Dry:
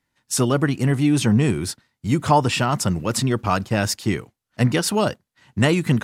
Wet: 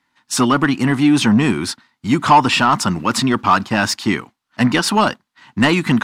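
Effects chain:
graphic EQ with 10 bands 250 Hz +9 dB, 500 Hz −8 dB, 1,000 Hz +7 dB, 4,000 Hz +3 dB
mid-hump overdrive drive 15 dB, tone 3,400 Hz, clips at 0 dBFS
level −1 dB

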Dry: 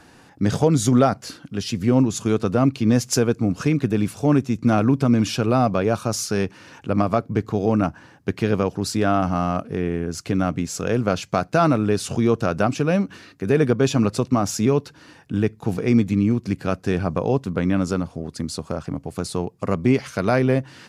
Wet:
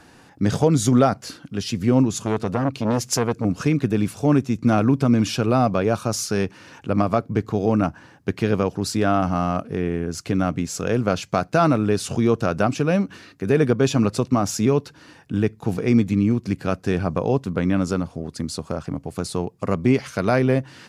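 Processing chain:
0:02.15–0:03.45: saturating transformer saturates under 710 Hz

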